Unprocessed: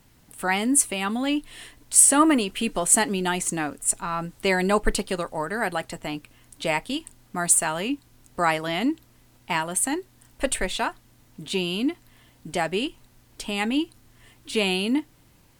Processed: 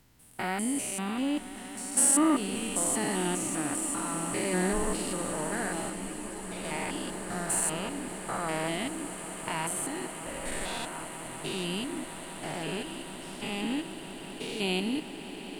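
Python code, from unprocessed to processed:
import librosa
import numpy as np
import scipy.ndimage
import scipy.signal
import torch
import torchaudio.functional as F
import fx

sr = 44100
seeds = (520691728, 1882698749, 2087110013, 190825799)

y = fx.spec_steps(x, sr, hold_ms=200)
y = fx.echo_swell(y, sr, ms=194, loudest=8, wet_db=-16.5)
y = fx.ensemble(y, sr, at=(5.89, 6.63), fade=0.02)
y = y * librosa.db_to_amplitude(-3.5)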